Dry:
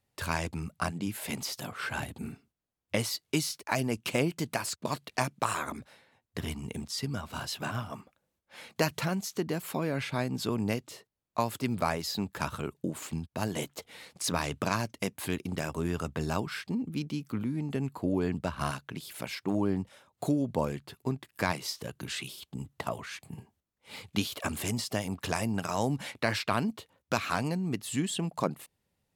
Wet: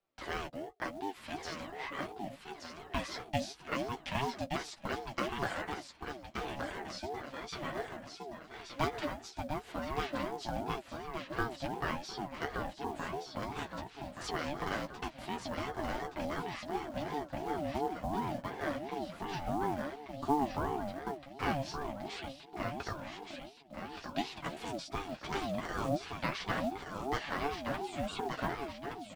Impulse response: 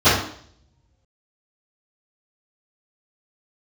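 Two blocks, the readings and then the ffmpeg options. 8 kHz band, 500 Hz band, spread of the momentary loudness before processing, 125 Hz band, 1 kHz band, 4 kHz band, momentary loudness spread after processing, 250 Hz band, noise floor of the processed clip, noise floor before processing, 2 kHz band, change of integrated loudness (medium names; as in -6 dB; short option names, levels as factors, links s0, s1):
-13.0 dB, -3.5 dB, 10 LU, -9.5 dB, -1.0 dB, -6.5 dB, 8 LU, -7.0 dB, -54 dBFS, -83 dBFS, -4.0 dB, -5.5 dB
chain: -filter_complex "[0:a]lowpass=4500,flanger=delay=5:depth=2.7:regen=10:speed=0.71:shape=triangular,acrossover=split=1300[s0][s1];[s0]acrusher=bits=6:mode=log:mix=0:aa=0.000001[s2];[s2][s1]amix=inputs=2:normalize=0,asplit=2[s3][s4];[s4]adelay=14,volume=0.447[s5];[s3][s5]amix=inputs=2:normalize=0,aecho=1:1:1172|2344|3516|4688|5860|7032:0.562|0.276|0.135|0.0662|0.0324|0.0159,aeval=exprs='val(0)*sin(2*PI*500*n/s+500*0.2/2.8*sin(2*PI*2.8*n/s))':c=same,volume=0.891"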